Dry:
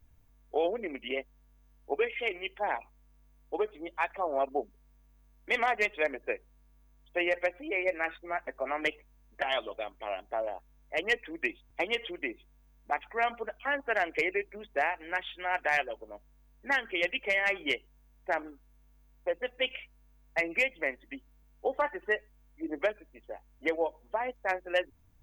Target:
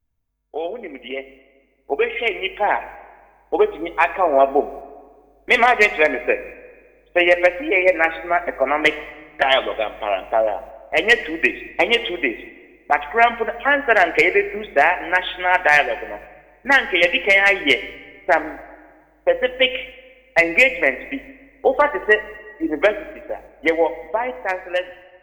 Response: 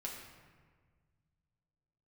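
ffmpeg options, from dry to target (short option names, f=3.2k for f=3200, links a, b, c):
-filter_complex "[0:a]agate=range=-14dB:threshold=-53dB:ratio=16:detection=peak,dynaudnorm=f=820:g=5:m=12.5dB,asplit=2[a][b];[1:a]atrim=start_sample=2205,asetrate=42336,aresample=44100[c];[b][c]afir=irnorm=-1:irlink=0,volume=-7dB[d];[a][d]amix=inputs=2:normalize=0"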